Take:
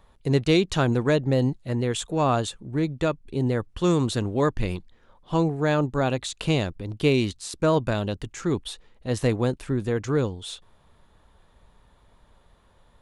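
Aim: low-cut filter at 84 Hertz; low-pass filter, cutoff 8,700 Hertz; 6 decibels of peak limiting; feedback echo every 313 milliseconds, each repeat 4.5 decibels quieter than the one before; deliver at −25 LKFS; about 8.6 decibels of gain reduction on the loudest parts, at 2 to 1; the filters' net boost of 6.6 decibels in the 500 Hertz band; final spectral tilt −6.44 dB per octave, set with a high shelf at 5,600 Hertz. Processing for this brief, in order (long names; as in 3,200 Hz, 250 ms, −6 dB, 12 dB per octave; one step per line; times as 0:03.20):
high-pass filter 84 Hz
low-pass filter 8,700 Hz
parametric band 500 Hz +8 dB
high-shelf EQ 5,600 Hz −9 dB
downward compressor 2 to 1, threshold −28 dBFS
brickwall limiter −18.5 dBFS
repeating echo 313 ms, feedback 60%, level −4.5 dB
level +3.5 dB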